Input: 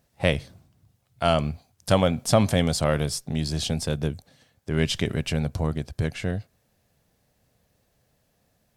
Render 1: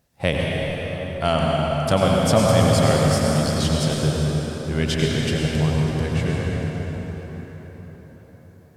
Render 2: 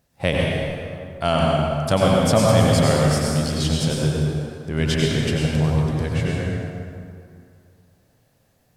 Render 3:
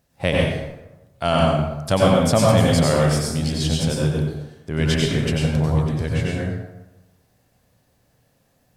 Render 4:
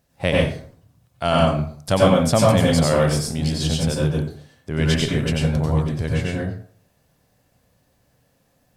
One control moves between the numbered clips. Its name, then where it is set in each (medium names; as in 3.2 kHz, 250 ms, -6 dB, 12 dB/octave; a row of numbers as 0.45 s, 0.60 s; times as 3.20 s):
plate-style reverb, RT60: 5.3 s, 2.4 s, 1 s, 0.5 s